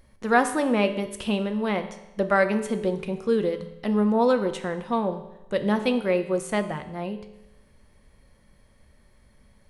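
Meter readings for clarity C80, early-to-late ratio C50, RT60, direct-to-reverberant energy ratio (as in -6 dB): 13.0 dB, 11.0 dB, 0.95 s, 8.0 dB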